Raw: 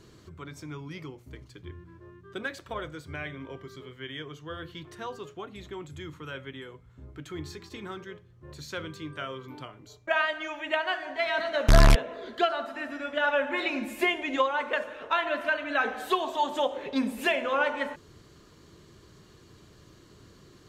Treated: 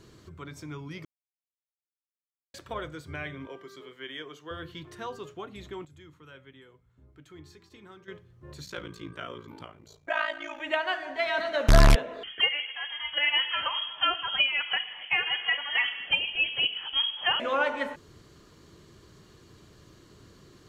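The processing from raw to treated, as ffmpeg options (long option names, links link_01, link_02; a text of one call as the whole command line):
ffmpeg -i in.wav -filter_complex "[0:a]asettb=1/sr,asplit=3[link_01][link_02][link_03];[link_01]atrim=end=3.474[link_04];[link_02]atrim=start=3.47:end=4.51,asetpts=PTS-STARTPTS,afade=type=in:duration=0.004:curve=qsin,afade=type=out:start_time=1.036:duration=0.004:curve=qsin,highpass=290[link_05];[link_03]atrim=start=4.506[link_06];[link_04][link_05]acrossfade=duration=0.004:curve1=hsin:curve2=qsin[link_07];[link_07][link_06]acrossfade=duration=0.004:curve1=qsin:curve2=hsin,asettb=1/sr,asplit=3[link_08][link_09][link_10];[link_08]atrim=end=8.654[link_11];[link_09]atrim=start=8.65:end=10.6,asetpts=PTS-STARTPTS,afade=type=in:duration=0.004:curve=qsin,afade=type=out:start_time=1.946:duration=0.004:curve=qsin,aeval=exprs='val(0)*sin(2*PI*28*n/s)':channel_layout=same[link_12];[link_10]atrim=start=10.596[link_13];[link_11][link_12]acrossfade=duration=0.004:curve1=hsin:curve2=qsin[link_14];[link_14][link_13]acrossfade=duration=0.004:curve1=qsin:curve2=hsin,asettb=1/sr,asplit=3[link_15][link_16][link_17];[link_15]atrim=end=12.234[link_18];[link_16]atrim=start=12.23:end=17.4,asetpts=PTS-STARTPTS,afade=type=in:duration=0.004:curve=qsin,afade=type=out:start_time=5.166:duration=0.004:curve=qsin,lowpass=frequency=3000:width_type=q:width=0.5098,lowpass=frequency=3000:width_type=q:width=0.6013,lowpass=frequency=3000:width_type=q:width=0.9,lowpass=frequency=3000:width_type=q:width=2.563,afreqshift=-3500[link_19];[link_17]atrim=start=17.396[link_20];[link_18][link_19]acrossfade=duration=0.004:curve1=hsin:curve2=qsin[link_21];[link_21][link_20]acrossfade=duration=0.004:curve1=qsin:curve2=hsin,asplit=5[link_22][link_23][link_24][link_25][link_26];[link_22]atrim=end=1.05,asetpts=PTS-STARTPTS,afade=type=out:start_time=1.046:duration=0.004:curve=hsin[link_27];[link_23]atrim=start=1.05:end=2.54,asetpts=PTS-STARTPTS,volume=0[link_28];[link_24]atrim=start=2.54:end=5.852,asetpts=PTS-STARTPTS,afade=type=in:duration=0.004:curve=hsin[link_29];[link_25]atrim=start=5.848:end=8.082,asetpts=PTS-STARTPTS,volume=-11dB[link_30];[link_26]atrim=start=8.078[link_31];[link_27][link_28][link_29]concat=n=3:v=0:a=1[link_32];[link_32][link_30]acrossfade=duration=0.004:curve1=hsin:curve2=hsin[link_33];[link_33][link_31]acrossfade=duration=0.004:curve1=hsin:curve2=hsin" out.wav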